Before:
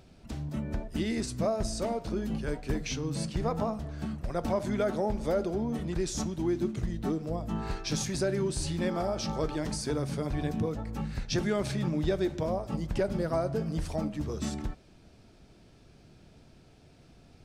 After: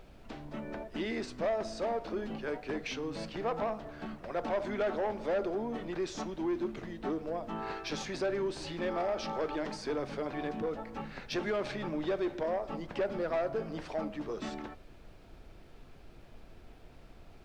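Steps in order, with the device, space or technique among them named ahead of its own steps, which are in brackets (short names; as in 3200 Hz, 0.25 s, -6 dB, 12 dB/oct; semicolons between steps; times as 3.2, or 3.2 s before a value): aircraft cabin announcement (BPF 360–3100 Hz; soft clip -28.5 dBFS, distortion -13 dB; brown noise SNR 16 dB); gain +2.5 dB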